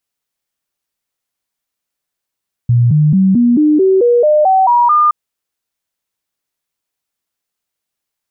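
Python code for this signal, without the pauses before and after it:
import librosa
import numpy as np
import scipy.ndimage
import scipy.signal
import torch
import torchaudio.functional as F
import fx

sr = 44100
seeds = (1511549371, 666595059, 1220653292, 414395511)

y = fx.stepped_sweep(sr, from_hz=120.0, direction='up', per_octave=3, tones=11, dwell_s=0.22, gap_s=0.0, level_db=-6.5)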